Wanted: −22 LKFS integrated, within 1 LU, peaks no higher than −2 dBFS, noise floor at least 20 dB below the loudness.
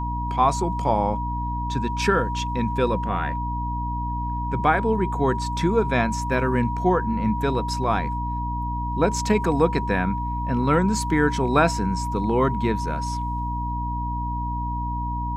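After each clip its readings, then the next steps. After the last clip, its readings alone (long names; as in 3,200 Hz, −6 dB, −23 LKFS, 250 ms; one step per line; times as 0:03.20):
mains hum 60 Hz; hum harmonics up to 300 Hz; level of the hum −26 dBFS; interfering tone 960 Hz; level of the tone −28 dBFS; integrated loudness −23.5 LKFS; sample peak −5.5 dBFS; target loudness −22.0 LKFS
→ mains-hum notches 60/120/180/240/300 Hz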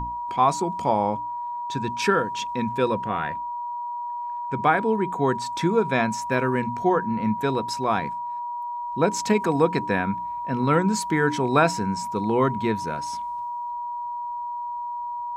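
mains hum none found; interfering tone 960 Hz; level of the tone −28 dBFS
→ notch filter 960 Hz, Q 30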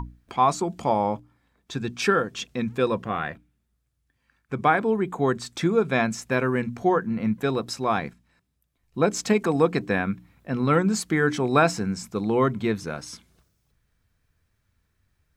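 interfering tone none found; integrated loudness −24.5 LKFS; sample peak −6.5 dBFS; target loudness −22.0 LKFS
→ level +2.5 dB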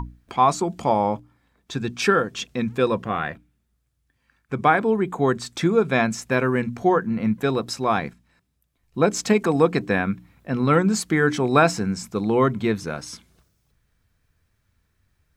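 integrated loudness −22.0 LKFS; sample peak −4.0 dBFS; background noise floor −71 dBFS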